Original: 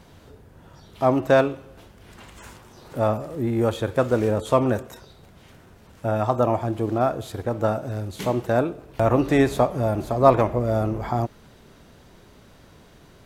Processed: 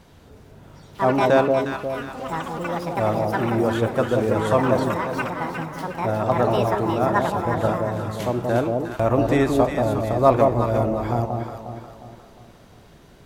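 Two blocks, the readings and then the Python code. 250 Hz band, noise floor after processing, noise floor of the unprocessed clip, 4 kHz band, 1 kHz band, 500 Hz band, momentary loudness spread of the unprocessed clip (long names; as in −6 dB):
+1.5 dB, −49 dBFS, −51 dBFS, +3.0 dB, +3.0 dB, +1.5 dB, 10 LU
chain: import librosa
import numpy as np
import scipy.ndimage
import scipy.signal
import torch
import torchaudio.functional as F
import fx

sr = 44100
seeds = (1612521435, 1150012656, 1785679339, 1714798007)

y = fx.echo_pitch(x, sr, ms=314, semitones=7, count=2, db_per_echo=-6.0)
y = fx.echo_alternate(y, sr, ms=179, hz=900.0, feedback_pct=65, wet_db=-2.5)
y = y * librosa.db_to_amplitude(-1.0)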